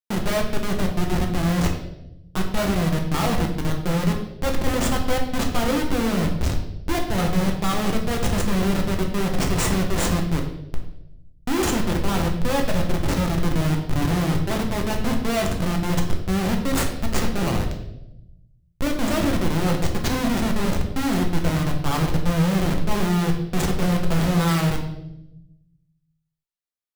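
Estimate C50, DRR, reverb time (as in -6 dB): 7.0 dB, 1.0 dB, 0.90 s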